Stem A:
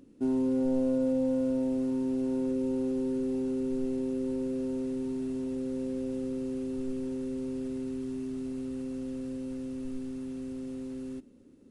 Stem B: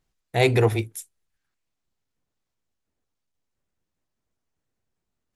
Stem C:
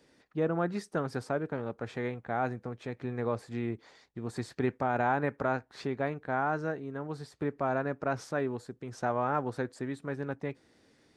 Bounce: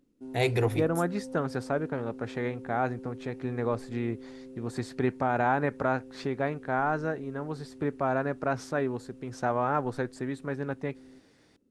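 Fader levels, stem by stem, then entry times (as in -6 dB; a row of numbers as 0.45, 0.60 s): -14.0, -7.0, +2.5 dB; 0.00, 0.00, 0.40 s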